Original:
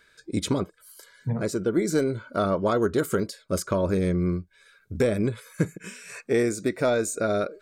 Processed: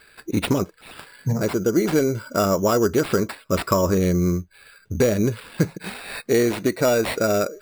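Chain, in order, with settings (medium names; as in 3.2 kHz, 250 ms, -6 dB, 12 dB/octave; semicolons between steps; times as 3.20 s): 3.17–3.98 s: peaking EQ 1.1 kHz +9.5 dB 0.25 oct; in parallel at -2 dB: compression, threshold -32 dBFS, peak gain reduction 13.5 dB; on the sum: sample-and-hold 7×; trim +2.5 dB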